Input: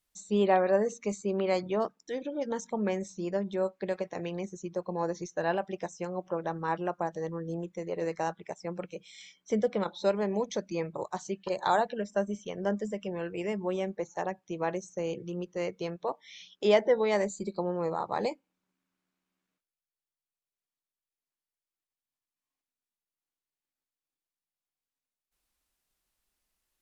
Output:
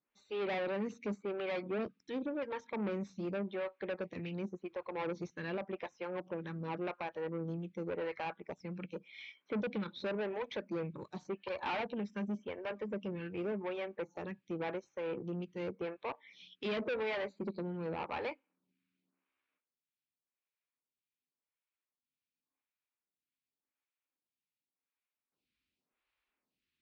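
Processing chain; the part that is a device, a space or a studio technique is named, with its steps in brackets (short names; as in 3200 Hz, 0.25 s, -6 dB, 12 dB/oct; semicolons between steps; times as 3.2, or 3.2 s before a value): vibe pedal into a guitar amplifier (photocell phaser 0.89 Hz; tube stage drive 35 dB, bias 0.4; speaker cabinet 78–4000 Hz, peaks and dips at 250 Hz +5 dB, 700 Hz -4 dB, 2400 Hz +6 dB); gain +2 dB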